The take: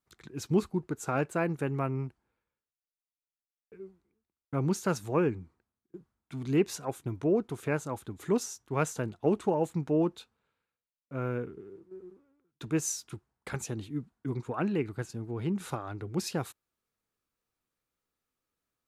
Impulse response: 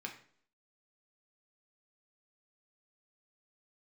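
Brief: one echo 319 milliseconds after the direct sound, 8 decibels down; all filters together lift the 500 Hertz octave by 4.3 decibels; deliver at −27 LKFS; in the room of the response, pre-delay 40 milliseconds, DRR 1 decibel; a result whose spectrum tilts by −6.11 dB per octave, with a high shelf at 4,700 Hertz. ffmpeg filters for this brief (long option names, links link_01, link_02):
-filter_complex "[0:a]equalizer=frequency=500:width_type=o:gain=5.5,highshelf=frequency=4700:gain=-8,aecho=1:1:319:0.398,asplit=2[link_01][link_02];[1:a]atrim=start_sample=2205,adelay=40[link_03];[link_02][link_03]afir=irnorm=-1:irlink=0,volume=-0.5dB[link_04];[link_01][link_04]amix=inputs=2:normalize=0"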